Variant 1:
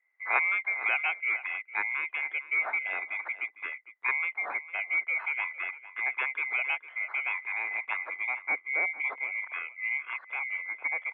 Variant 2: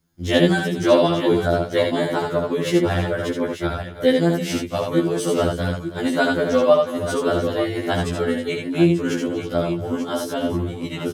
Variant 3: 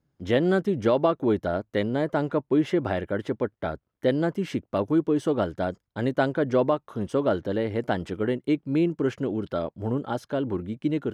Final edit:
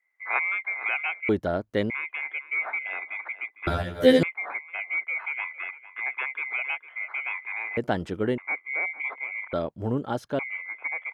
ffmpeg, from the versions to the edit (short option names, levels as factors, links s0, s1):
-filter_complex "[2:a]asplit=3[s0][s1][s2];[0:a]asplit=5[s3][s4][s5][s6][s7];[s3]atrim=end=1.292[s8];[s0]atrim=start=1.288:end=1.902[s9];[s4]atrim=start=1.898:end=3.672[s10];[1:a]atrim=start=3.668:end=4.232[s11];[s5]atrim=start=4.228:end=7.772[s12];[s1]atrim=start=7.768:end=8.382[s13];[s6]atrim=start=8.378:end=9.532[s14];[s2]atrim=start=9.528:end=10.392[s15];[s7]atrim=start=10.388[s16];[s8][s9]acrossfade=d=0.004:c1=hsin:c2=hsin[s17];[s17][s10]acrossfade=d=0.004:c1=hsin:c2=hsin[s18];[s18][s11]acrossfade=d=0.004:c1=hsin:c2=hsin[s19];[s19][s12]acrossfade=d=0.004:c1=hsin:c2=hsin[s20];[s20][s13]acrossfade=d=0.004:c1=hsin:c2=hsin[s21];[s21][s14]acrossfade=d=0.004:c1=hsin:c2=hsin[s22];[s22][s15]acrossfade=d=0.004:c1=hsin:c2=hsin[s23];[s23][s16]acrossfade=d=0.004:c1=hsin:c2=hsin"